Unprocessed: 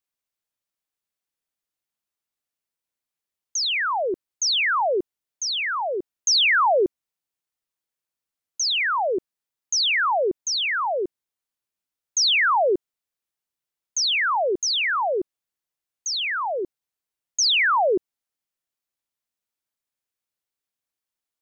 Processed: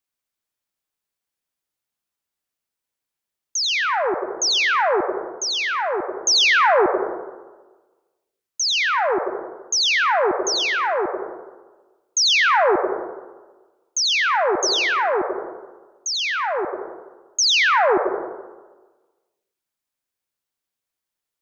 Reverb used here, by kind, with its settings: plate-style reverb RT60 1.3 s, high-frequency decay 0.35×, pre-delay 75 ms, DRR 5 dB; gain +2 dB

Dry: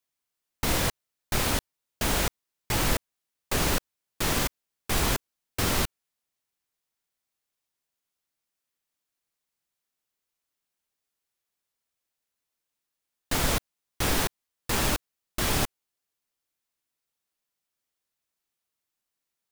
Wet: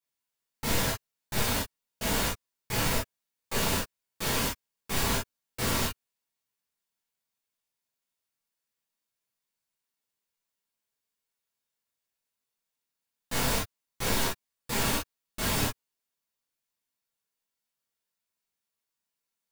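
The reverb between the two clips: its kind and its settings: non-linear reverb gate 80 ms flat, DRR -7.5 dB; gain -10 dB

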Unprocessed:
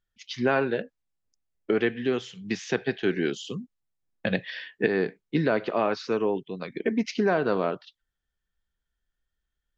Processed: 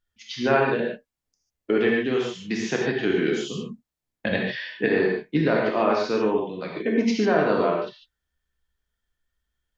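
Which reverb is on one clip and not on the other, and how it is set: non-linear reverb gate 0.17 s flat, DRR -2 dB

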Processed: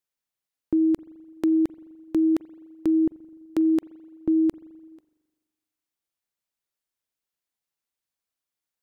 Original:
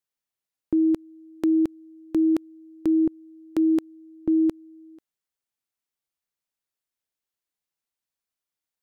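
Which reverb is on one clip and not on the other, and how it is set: spring tank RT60 1.4 s, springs 42 ms, chirp 65 ms, DRR 19 dB

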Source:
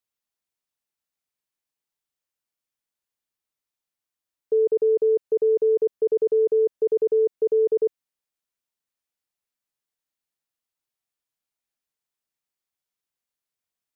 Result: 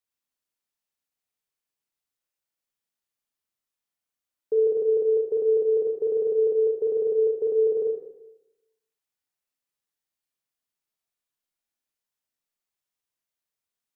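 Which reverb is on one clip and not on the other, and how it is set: Schroeder reverb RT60 0.94 s, combs from 26 ms, DRR 1.5 dB; gain -3 dB

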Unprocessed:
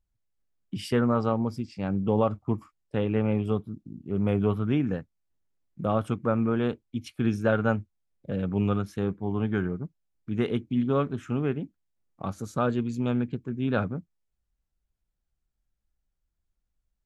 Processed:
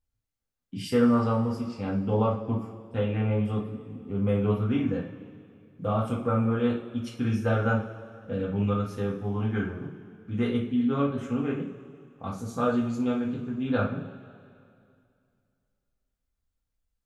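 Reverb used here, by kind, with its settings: two-slope reverb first 0.34 s, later 2.4 s, from -18 dB, DRR -4.5 dB; gain -6 dB

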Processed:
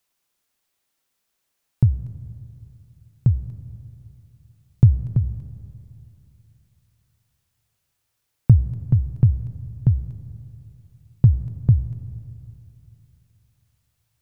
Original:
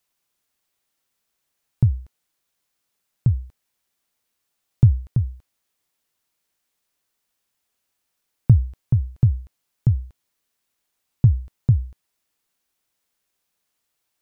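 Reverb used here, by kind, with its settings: digital reverb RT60 3 s, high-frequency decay 0.6×, pre-delay 50 ms, DRR 14 dB; gain +1 dB

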